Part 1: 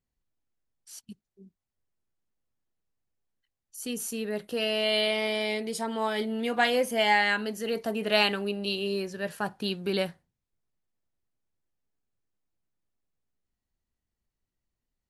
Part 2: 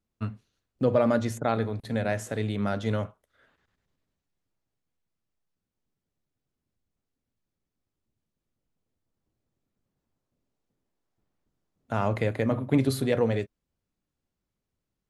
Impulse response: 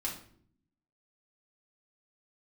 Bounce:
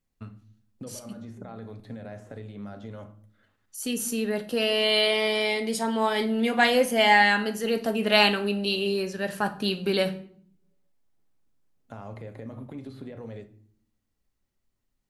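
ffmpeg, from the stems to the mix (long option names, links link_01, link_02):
-filter_complex "[0:a]volume=1dB,asplit=3[link_01][link_02][link_03];[link_02]volume=-6dB[link_04];[1:a]acrossover=split=3600[link_05][link_06];[link_06]acompressor=threshold=-53dB:ratio=4:attack=1:release=60[link_07];[link_05][link_07]amix=inputs=2:normalize=0,alimiter=limit=-21dB:level=0:latency=1:release=93,acrossover=split=1600|3700[link_08][link_09][link_10];[link_08]acompressor=threshold=-33dB:ratio=4[link_11];[link_09]acompressor=threshold=-59dB:ratio=4[link_12];[link_10]acompressor=threshold=-60dB:ratio=4[link_13];[link_11][link_12][link_13]amix=inputs=3:normalize=0,volume=-7dB,asplit=2[link_14][link_15];[link_15]volume=-7dB[link_16];[link_03]apad=whole_len=665847[link_17];[link_14][link_17]sidechaincompress=threshold=-47dB:ratio=8:attack=16:release=502[link_18];[2:a]atrim=start_sample=2205[link_19];[link_04][link_16]amix=inputs=2:normalize=0[link_20];[link_20][link_19]afir=irnorm=-1:irlink=0[link_21];[link_01][link_18][link_21]amix=inputs=3:normalize=0"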